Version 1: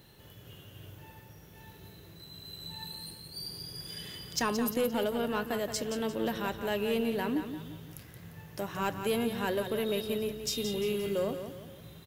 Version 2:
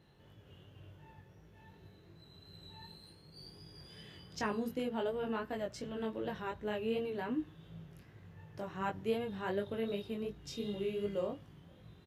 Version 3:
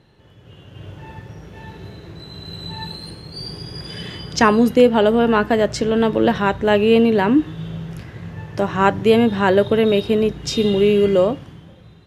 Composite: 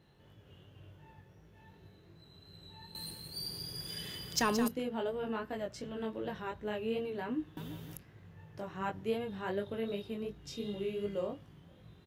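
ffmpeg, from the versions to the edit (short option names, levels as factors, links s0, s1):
-filter_complex "[0:a]asplit=2[s0][s1];[1:a]asplit=3[s2][s3][s4];[s2]atrim=end=2.952[s5];[s0]atrim=start=2.948:end=4.682[s6];[s3]atrim=start=4.678:end=7.572[s7];[s1]atrim=start=7.568:end=7.972[s8];[s4]atrim=start=7.968[s9];[s5][s6]acrossfade=d=0.004:c1=hsin:c2=hsin[s10];[s10][s7]acrossfade=d=0.004:c1=hsin:c2=hsin[s11];[s11][s8]acrossfade=d=0.004:c1=hsin:c2=hsin[s12];[s12][s9]acrossfade=d=0.004:c1=hsin:c2=hsin"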